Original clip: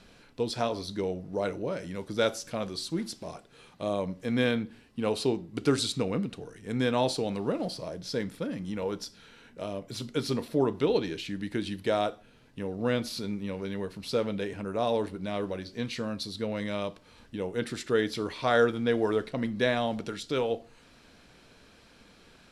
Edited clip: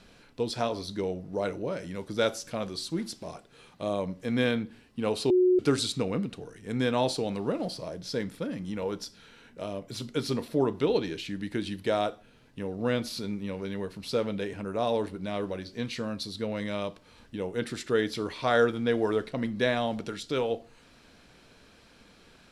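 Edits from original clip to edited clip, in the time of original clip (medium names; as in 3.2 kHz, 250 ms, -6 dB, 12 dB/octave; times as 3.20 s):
5.30–5.59 s: bleep 365 Hz -18 dBFS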